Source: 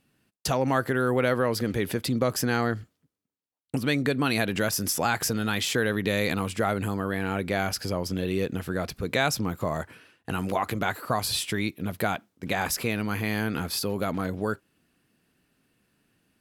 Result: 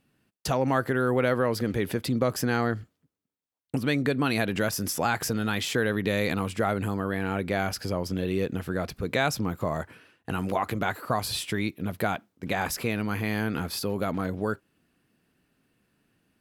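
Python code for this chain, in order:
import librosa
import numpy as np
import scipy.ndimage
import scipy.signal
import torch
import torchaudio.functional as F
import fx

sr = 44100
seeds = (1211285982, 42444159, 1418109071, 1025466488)

y = fx.peak_eq(x, sr, hz=8800.0, db=-4.0, octaves=2.9)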